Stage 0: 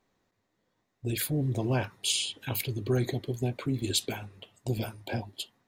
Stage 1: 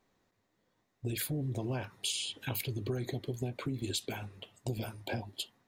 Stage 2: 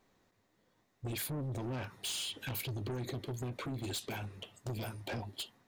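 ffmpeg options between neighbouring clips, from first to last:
-af "acompressor=threshold=-32dB:ratio=6"
-af "asoftclip=type=tanh:threshold=-38dB,volume=3dB"

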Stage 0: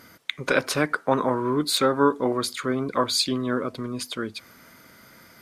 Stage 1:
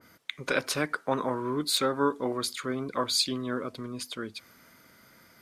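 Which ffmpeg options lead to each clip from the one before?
-af "adynamicequalizer=threshold=0.02:dfrequency=2100:dqfactor=0.7:tfrequency=2100:tqfactor=0.7:attack=5:release=100:ratio=0.375:range=2:mode=boostabove:tftype=highshelf,volume=-6.5dB"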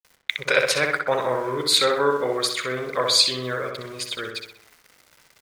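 -filter_complex "[0:a]equalizer=f=125:t=o:w=1:g=3,equalizer=f=250:t=o:w=1:g=-10,equalizer=f=500:t=o:w=1:g=9,equalizer=f=2k:t=o:w=1:g=10,equalizer=f=4k:t=o:w=1:g=6,equalizer=f=8k:t=o:w=1:g=6,aeval=exprs='val(0)*gte(abs(val(0)),0.00668)':c=same,asplit=2[a][b];[b]adelay=63,lowpass=f=3.3k:p=1,volume=-3.5dB,asplit=2[c][d];[d]adelay=63,lowpass=f=3.3k:p=1,volume=0.54,asplit=2[e][f];[f]adelay=63,lowpass=f=3.3k:p=1,volume=0.54,asplit=2[g][h];[h]adelay=63,lowpass=f=3.3k:p=1,volume=0.54,asplit=2[i][j];[j]adelay=63,lowpass=f=3.3k:p=1,volume=0.54,asplit=2[k][l];[l]adelay=63,lowpass=f=3.3k:p=1,volume=0.54,asplit=2[m][n];[n]adelay=63,lowpass=f=3.3k:p=1,volume=0.54[o];[a][c][e][g][i][k][m][o]amix=inputs=8:normalize=0"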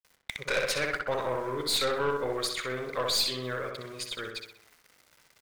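-af "aeval=exprs='(tanh(7.08*val(0)+0.35)-tanh(0.35))/7.08':c=same,volume=-5dB"

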